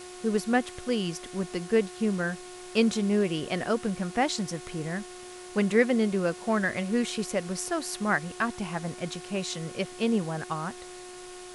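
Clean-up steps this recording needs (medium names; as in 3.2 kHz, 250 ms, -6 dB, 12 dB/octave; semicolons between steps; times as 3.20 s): de-hum 361.9 Hz, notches 34; noise reduction 29 dB, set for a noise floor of -43 dBFS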